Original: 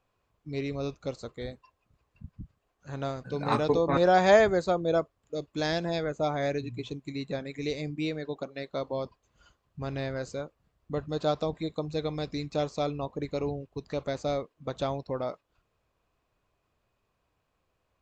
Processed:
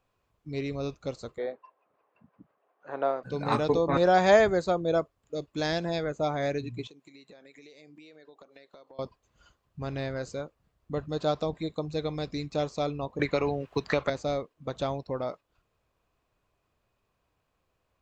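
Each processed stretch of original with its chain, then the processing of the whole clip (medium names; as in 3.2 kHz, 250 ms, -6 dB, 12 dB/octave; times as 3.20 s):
1.38–3.23 s: band-pass 420–2200 Hz + peaking EQ 600 Hz +9 dB 2.8 oct
6.87–8.99 s: Bessel high-pass 420 Hz + compression 12:1, threshold -48 dBFS
13.19–14.10 s: peaking EQ 1.7 kHz +13 dB 2.5 oct + three bands compressed up and down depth 100%
whole clip: none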